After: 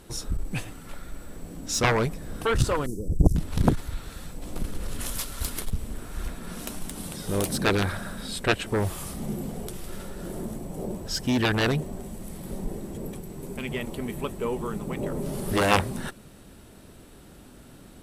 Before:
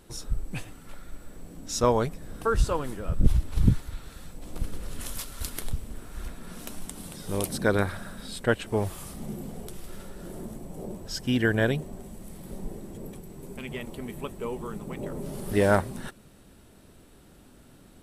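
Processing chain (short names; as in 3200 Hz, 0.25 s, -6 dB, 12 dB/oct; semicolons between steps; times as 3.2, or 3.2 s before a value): 2.86–3.36 elliptic band-stop 430–5900 Hz, stop band 40 dB; added harmonics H 7 -8 dB, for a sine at -5 dBFS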